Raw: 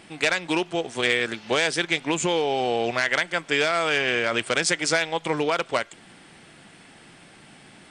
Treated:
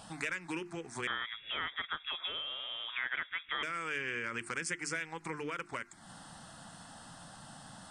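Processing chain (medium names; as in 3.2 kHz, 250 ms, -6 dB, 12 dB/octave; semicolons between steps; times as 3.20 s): hum notches 50/100/150/200/250/300/350 Hz; compression 3:1, threshold -38 dBFS, peak gain reduction 15.5 dB; touch-sensitive phaser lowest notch 340 Hz, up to 1.9 kHz, full sweep at -25 dBFS; 1.07–3.63 s: frequency inversion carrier 3.6 kHz; trim +2.5 dB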